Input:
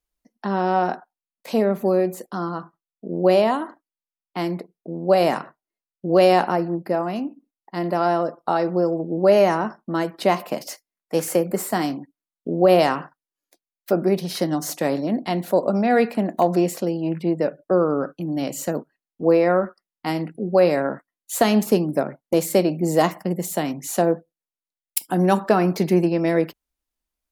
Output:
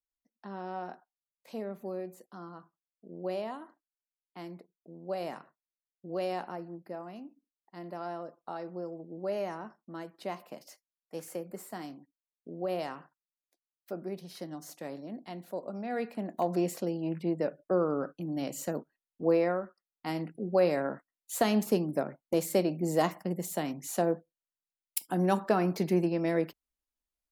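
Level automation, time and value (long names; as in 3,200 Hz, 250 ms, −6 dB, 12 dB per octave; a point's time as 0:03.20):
0:15.75 −18.5 dB
0:16.68 −9 dB
0:19.43 −9 dB
0:19.64 −16 dB
0:20.17 −9 dB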